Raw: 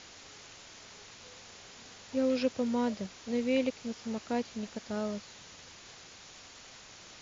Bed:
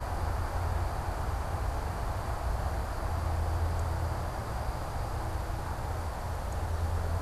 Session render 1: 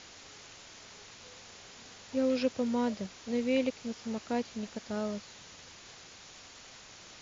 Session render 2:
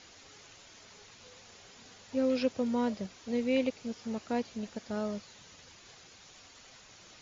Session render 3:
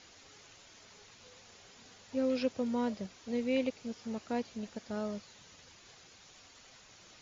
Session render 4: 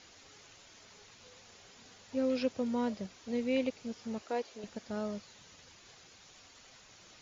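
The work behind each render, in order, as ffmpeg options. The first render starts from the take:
-af anull
-af "afftdn=nr=6:nf=-52"
-af "volume=0.75"
-filter_complex "[0:a]asettb=1/sr,asplit=3[s0][s1][s2];[s0]atrim=end=4.224[s3];[s1]atrim=start=4.22:end=4.64,asetpts=PTS-STARTPTS,afade=t=in:d=0.004:c=qsin,afade=t=out:st=0.416:d=0.004:c=qsin,lowshelf=f=270:t=q:w=1.5:g=-12.5[s4];[s2]atrim=start=4.636[s5];[s3][s4]acrossfade=d=0.004:c1=hsin:c2=qsin[s6];[s6][s5]acrossfade=d=0.004:c1=qsin:c2=hsin"

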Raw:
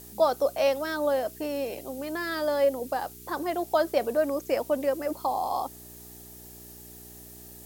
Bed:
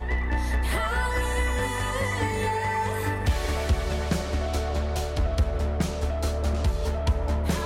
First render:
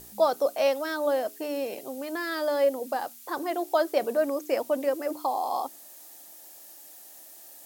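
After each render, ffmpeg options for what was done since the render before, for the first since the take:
-af "bandreject=f=60:t=h:w=4,bandreject=f=120:t=h:w=4,bandreject=f=180:t=h:w=4,bandreject=f=240:t=h:w=4,bandreject=f=300:t=h:w=4,bandreject=f=360:t=h:w=4,bandreject=f=420:t=h:w=4"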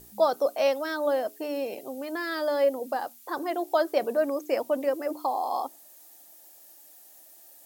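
-af "afftdn=nr=6:nf=-49"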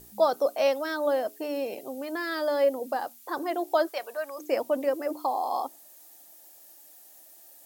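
-filter_complex "[0:a]asplit=3[s0][s1][s2];[s0]afade=t=out:st=3.88:d=0.02[s3];[s1]highpass=960,afade=t=in:st=3.88:d=0.02,afade=t=out:st=4.38:d=0.02[s4];[s2]afade=t=in:st=4.38:d=0.02[s5];[s3][s4][s5]amix=inputs=3:normalize=0"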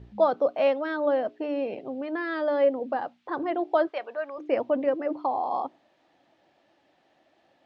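-af "lowpass=f=3200:w=0.5412,lowpass=f=3200:w=1.3066,equalizer=f=81:t=o:w=2.5:g=13"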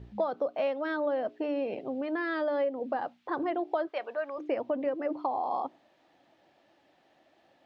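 -af "acompressor=threshold=0.0447:ratio=5"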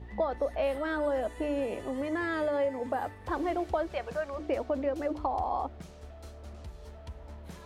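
-filter_complex "[1:a]volume=0.1[s0];[0:a][s0]amix=inputs=2:normalize=0"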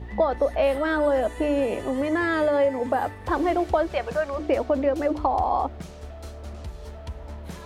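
-af "volume=2.51"

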